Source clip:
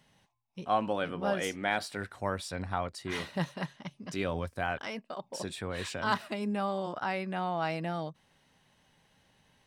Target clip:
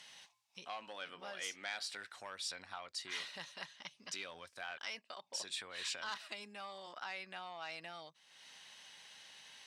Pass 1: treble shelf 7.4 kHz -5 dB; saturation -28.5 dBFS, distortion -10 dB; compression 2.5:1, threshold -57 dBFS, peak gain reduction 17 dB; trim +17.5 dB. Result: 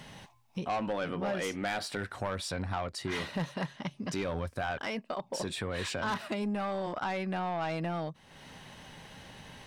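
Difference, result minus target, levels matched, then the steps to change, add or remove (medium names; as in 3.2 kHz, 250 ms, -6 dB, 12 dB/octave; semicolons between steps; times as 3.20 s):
4 kHz band -8.0 dB; saturation: distortion +8 dB
change: saturation -20.5 dBFS, distortion -18 dB; add after compression: band-pass filter 5.2 kHz, Q 0.77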